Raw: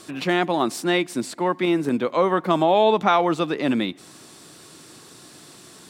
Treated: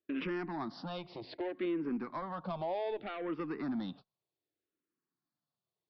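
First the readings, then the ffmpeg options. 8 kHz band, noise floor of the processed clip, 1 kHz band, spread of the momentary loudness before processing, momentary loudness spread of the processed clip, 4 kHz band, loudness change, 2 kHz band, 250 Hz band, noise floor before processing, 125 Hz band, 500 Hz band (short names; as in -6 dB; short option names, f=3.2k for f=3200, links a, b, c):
under -35 dB, under -85 dBFS, -20.0 dB, 8 LU, 8 LU, -20.5 dB, -17.0 dB, -18.5 dB, -14.0 dB, -47 dBFS, -15.0 dB, -17.5 dB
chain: -filter_complex "[0:a]agate=range=-42dB:threshold=-36dB:ratio=16:detection=peak,highshelf=f=2.1k:g=-8,acompressor=threshold=-29dB:ratio=6,aresample=11025,asoftclip=type=tanh:threshold=-28.5dB,aresample=44100,asplit=2[a][b];[b]afreqshift=-0.65[c];[a][c]amix=inputs=2:normalize=1"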